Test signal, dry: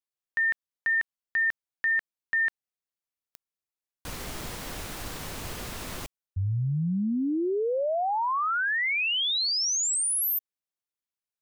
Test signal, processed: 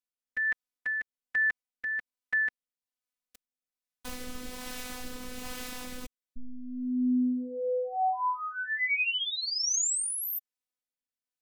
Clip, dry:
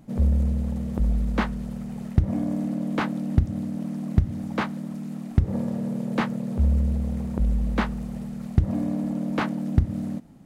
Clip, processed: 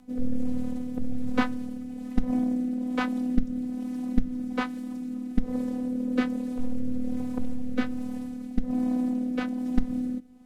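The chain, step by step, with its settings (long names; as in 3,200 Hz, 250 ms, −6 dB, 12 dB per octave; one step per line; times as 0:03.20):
phases set to zero 250 Hz
rotating-speaker cabinet horn 1.2 Hz
level +2 dB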